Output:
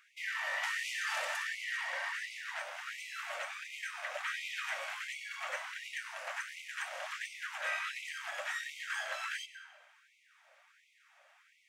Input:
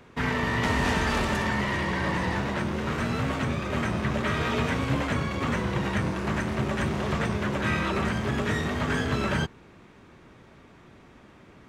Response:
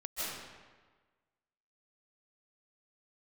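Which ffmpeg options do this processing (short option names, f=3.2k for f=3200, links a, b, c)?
-filter_complex "[0:a]equalizer=f=400:t=o:w=0.67:g=-6,equalizer=f=1k:t=o:w=0.67:g=-9,equalizer=f=4k:t=o:w=0.67:g=-5,asplit=2[a][b];[1:a]atrim=start_sample=2205,asetrate=52920,aresample=44100[c];[b][c]afir=irnorm=-1:irlink=0,volume=-13.5dB[d];[a][d]amix=inputs=2:normalize=0,afftfilt=real='re*gte(b*sr/1024,500*pow(2000/500,0.5+0.5*sin(2*PI*1.4*pts/sr)))':imag='im*gte(b*sr/1024,500*pow(2000/500,0.5+0.5*sin(2*PI*1.4*pts/sr)))':win_size=1024:overlap=0.75,volume=-4.5dB"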